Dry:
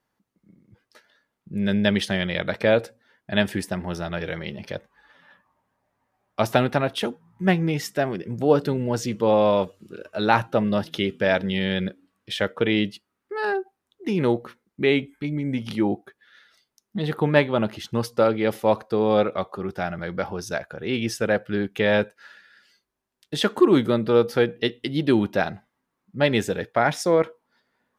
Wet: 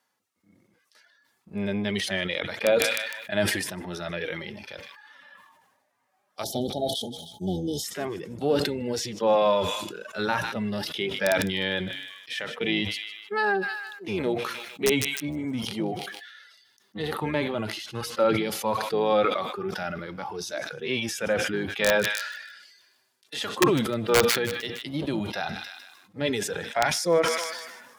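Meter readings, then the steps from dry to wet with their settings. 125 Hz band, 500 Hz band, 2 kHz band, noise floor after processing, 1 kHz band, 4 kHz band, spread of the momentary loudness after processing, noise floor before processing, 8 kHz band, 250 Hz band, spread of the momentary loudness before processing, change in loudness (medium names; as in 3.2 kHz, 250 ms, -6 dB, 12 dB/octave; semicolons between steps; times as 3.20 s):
-7.0 dB, -4.0 dB, -0.5 dB, -70 dBFS, -2.5 dB, +1.0 dB, 13 LU, -80 dBFS, +6.5 dB, -6.5 dB, 11 LU, -3.5 dB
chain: octave divider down 1 oct, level -1 dB; frequency weighting A; spectral selection erased 6.44–7.84 s, 880–3000 Hz; reverb removal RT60 0.56 s; harmonic-percussive split percussive -18 dB; treble shelf 4.9 kHz +9.5 dB; in parallel at +1.5 dB: compression 5:1, threshold -35 dBFS, peak gain reduction 16.5 dB; on the sum: integer overflow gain 11 dB; on a send: feedback echo behind a high-pass 153 ms, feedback 47%, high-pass 1.9 kHz, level -19.5 dB; on the sum: decay stretcher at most 45 dB/s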